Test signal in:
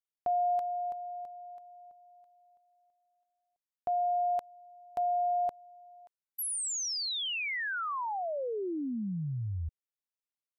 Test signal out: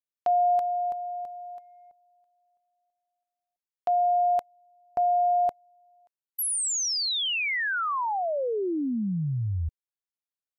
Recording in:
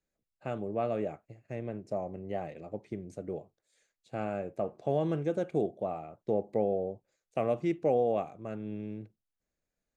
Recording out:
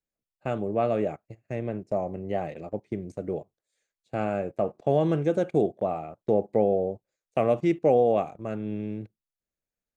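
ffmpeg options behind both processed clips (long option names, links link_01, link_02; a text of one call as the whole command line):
ffmpeg -i in.wav -af "agate=range=-13dB:threshold=-54dB:ratio=16:release=29:detection=peak,volume=6.5dB" out.wav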